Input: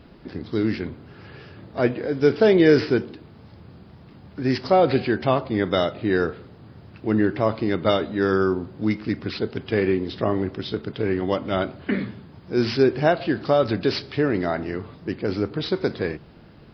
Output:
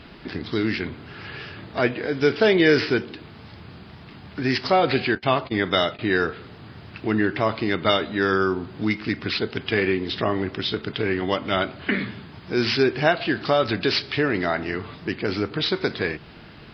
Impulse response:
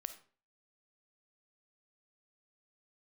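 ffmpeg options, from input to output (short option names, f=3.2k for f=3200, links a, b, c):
-filter_complex "[0:a]equalizer=f=2.7k:t=o:w=2.7:g=10,bandreject=f=530:w=12,asettb=1/sr,asplit=3[a][b][c];[a]atrim=end=5.154[d];[b]atrim=start=5.15:end=5.99,asetpts=PTS-STARTPTS,afade=t=in:d=0.004:c=qsin,afade=t=out:st=0.836:d=0.004:c=qsin,agate=range=-26dB:threshold=-26dB:ratio=16:detection=peak[e];[c]atrim=start=5.986[f];[d][e]acrossfade=d=0.004:c1=hsin:c2=qsin[g];[g][f]acrossfade=d=0.004:c1=qsin:c2=hsin,asplit=2[h][i];[i]acompressor=threshold=-28dB:ratio=6,volume=2dB[j];[h][j]amix=inputs=2:normalize=0,volume=-5dB"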